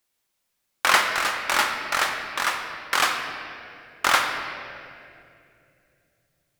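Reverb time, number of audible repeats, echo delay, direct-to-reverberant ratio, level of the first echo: 2.7 s, no echo, no echo, 3.0 dB, no echo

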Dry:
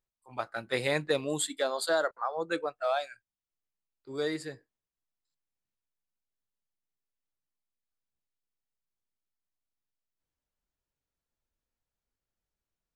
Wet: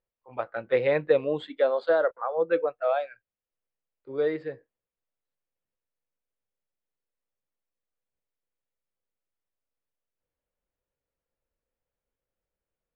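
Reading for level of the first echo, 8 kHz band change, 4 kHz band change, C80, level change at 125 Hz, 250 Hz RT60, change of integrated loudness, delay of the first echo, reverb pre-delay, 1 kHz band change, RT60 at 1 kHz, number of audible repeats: no echo, under -35 dB, -8.5 dB, no reverb, 0.0 dB, no reverb, +5.0 dB, no echo, no reverb, +1.5 dB, no reverb, no echo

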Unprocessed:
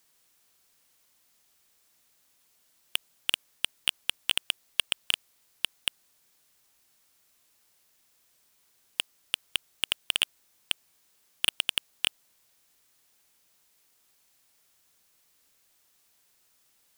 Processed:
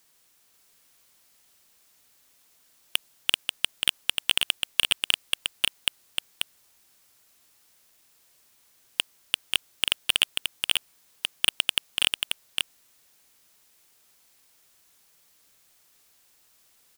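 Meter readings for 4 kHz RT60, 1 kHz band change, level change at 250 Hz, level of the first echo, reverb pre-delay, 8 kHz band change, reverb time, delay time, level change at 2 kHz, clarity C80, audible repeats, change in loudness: no reverb, +5.0 dB, +5.0 dB, -4.0 dB, no reverb, +5.0 dB, no reverb, 537 ms, +5.0 dB, no reverb, 1, +4.0 dB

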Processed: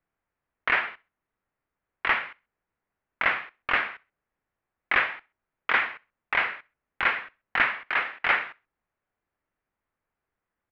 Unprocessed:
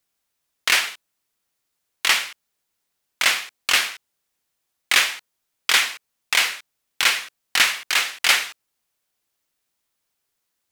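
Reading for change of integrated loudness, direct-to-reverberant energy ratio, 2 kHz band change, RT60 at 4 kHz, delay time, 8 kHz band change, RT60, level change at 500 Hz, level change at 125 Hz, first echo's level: -6.5 dB, no reverb, -3.5 dB, no reverb, 65 ms, under -40 dB, no reverb, 0.0 dB, no reading, -24.0 dB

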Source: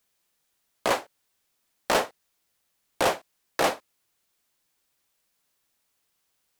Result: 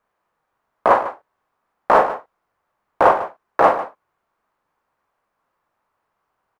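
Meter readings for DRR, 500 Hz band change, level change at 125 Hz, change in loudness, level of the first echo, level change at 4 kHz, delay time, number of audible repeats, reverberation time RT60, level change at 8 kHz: no reverb, +10.0 dB, +5.0 dB, +10.0 dB, -7.0 dB, -9.0 dB, 43 ms, 2, no reverb, under -10 dB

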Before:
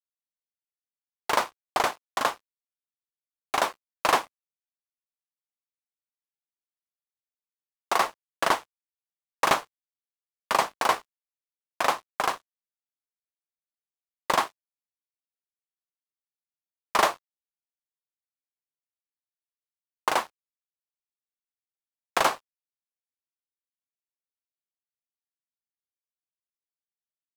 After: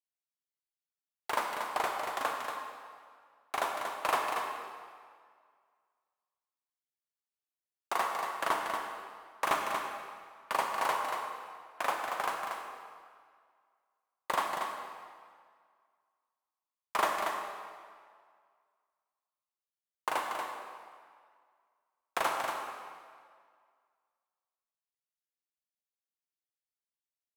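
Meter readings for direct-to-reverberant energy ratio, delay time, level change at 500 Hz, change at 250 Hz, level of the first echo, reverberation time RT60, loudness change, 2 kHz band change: 0.5 dB, 234 ms, -6.5 dB, -8.0 dB, -6.0 dB, 1.9 s, -7.5 dB, -5.5 dB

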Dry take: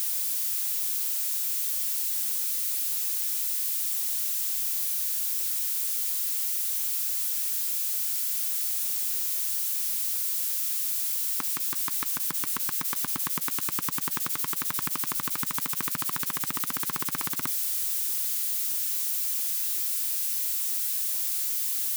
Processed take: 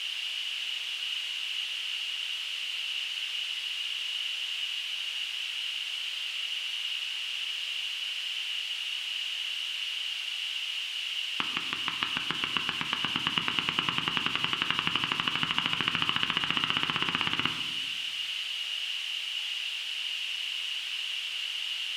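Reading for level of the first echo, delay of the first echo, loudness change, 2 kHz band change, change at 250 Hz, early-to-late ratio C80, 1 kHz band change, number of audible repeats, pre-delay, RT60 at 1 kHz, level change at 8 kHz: no echo, no echo, -4.5 dB, +10.0 dB, +2.0 dB, 9.0 dB, +3.0 dB, no echo, 4 ms, 1.2 s, -17.0 dB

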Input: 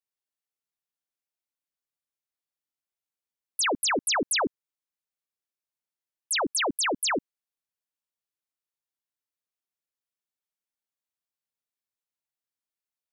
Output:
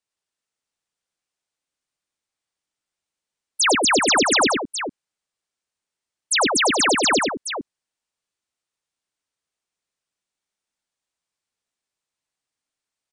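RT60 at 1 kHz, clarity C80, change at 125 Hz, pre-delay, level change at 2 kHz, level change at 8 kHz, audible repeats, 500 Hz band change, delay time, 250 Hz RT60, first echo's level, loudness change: no reverb, no reverb, +9.0 dB, no reverb, +9.0 dB, +8.0 dB, 2, +9.0 dB, 99 ms, no reverb, -3.5 dB, +8.0 dB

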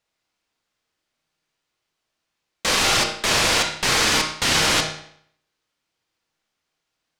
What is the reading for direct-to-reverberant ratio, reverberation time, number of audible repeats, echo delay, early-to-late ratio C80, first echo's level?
2.5 dB, 0.65 s, no echo, no echo, 9.0 dB, no echo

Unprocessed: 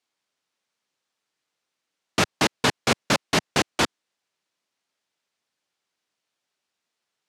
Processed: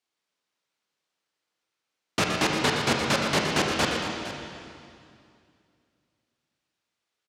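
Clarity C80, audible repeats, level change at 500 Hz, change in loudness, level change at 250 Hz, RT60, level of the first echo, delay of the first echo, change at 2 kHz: 1.0 dB, 2, -0.5 dB, -1.5 dB, -0.5 dB, 2.4 s, -7.5 dB, 119 ms, -1.0 dB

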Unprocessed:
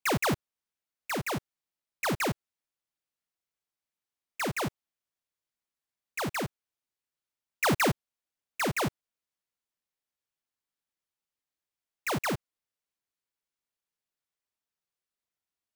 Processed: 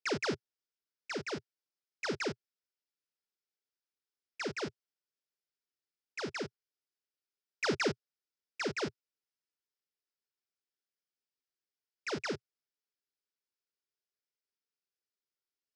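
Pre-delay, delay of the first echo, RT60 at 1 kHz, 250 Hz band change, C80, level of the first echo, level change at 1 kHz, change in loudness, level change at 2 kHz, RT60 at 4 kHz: no reverb, no echo, no reverb, -7.0 dB, no reverb, no echo, -10.5 dB, -6.5 dB, -6.0 dB, no reverb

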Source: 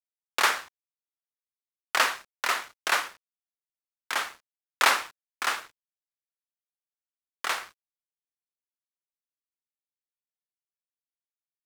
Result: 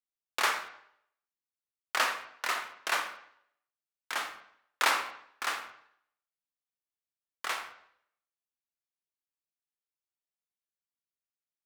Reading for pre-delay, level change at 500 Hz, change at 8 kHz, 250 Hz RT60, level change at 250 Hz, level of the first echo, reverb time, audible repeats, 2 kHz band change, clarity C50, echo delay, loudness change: 6 ms, -4.5 dB, -5.5 dB, 0.65 s, -4.0 dB, no echo, 0.70 s, no echo, -5.0 dB, 9.5 dB, no echo, -5.0 dB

